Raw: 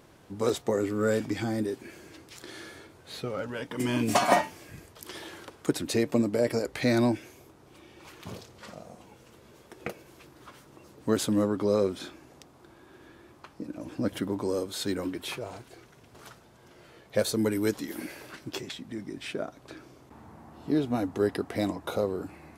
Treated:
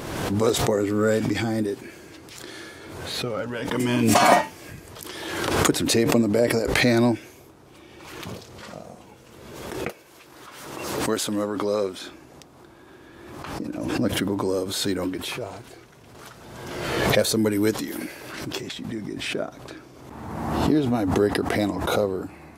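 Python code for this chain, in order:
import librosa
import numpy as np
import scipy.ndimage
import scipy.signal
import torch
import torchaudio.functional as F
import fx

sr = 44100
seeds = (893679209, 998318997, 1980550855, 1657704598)

y = fx.low_shelf(x, sr, hz=330.0, db=-11.5, at=(9.89, 12.06))
y = fx.pre_swell(y, sr, db_per_s=37.0)
y = y * librosa.db_to_amplitude(4.5)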